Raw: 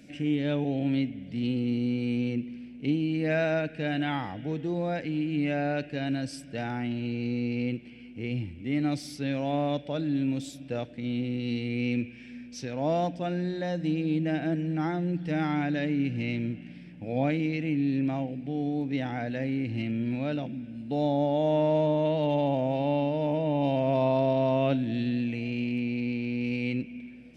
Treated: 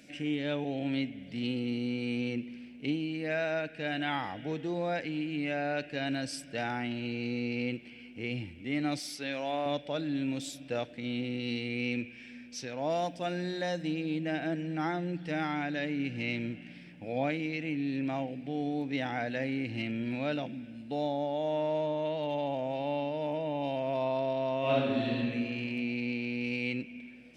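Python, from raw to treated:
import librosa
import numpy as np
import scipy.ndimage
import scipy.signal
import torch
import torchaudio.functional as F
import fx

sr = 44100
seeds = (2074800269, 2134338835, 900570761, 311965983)

y = fx.highpass(x, sr, hz=400.0, slope=6, at=(8.99, 9.66))
y = fx.high_shelf(y, sr, hz=7400.0, db=11.5, at=(12.9, 13.83))
y = fx.reverb_throw(y, sr, start_s=24.59, length_s=0.58, rt60_s=1.7, drr_db=-7.0)
y = fx.low_shelf(y, sr, hz=350.0, db=-11.0)
y = fx.rider(y, sr, range_db=3, speed_s=0.5)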